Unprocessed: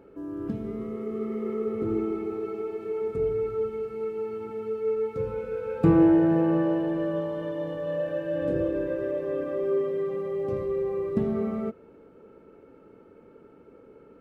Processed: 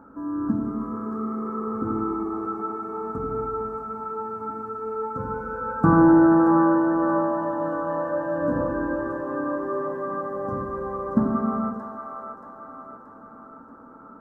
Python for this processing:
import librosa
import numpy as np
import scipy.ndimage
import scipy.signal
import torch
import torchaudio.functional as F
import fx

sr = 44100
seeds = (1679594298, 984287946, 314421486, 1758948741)

p1 = fx.curve_eq(x, sr, hz=(170.0, 250.0, 400.0, 1000.0, 1500.0, 2100.0, 3100.0, 5900.0), db=(0, 10, -10, 13, 12, -16, -20, -4))
p2 = p1 + fx.echo_split(p1, sr, split_hz=540.0, low_ms=88, high_ms=629, feedback_pct=52, wet_db=-4.5, dry=0)
y = p2 * 10.0 ** (1.0 / 20.0)